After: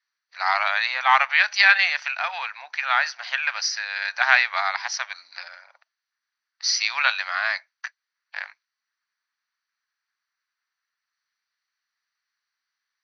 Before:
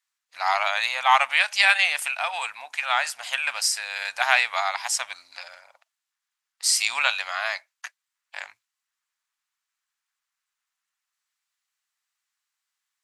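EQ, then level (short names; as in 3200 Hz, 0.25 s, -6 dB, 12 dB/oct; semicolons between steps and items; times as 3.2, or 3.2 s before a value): HPF 230 Hz 12 dB/oct; rippled Chebyshev low-pass 6100 Hz, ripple 9 dB; low shelf 290 Hz -8 dB; +6.0 dB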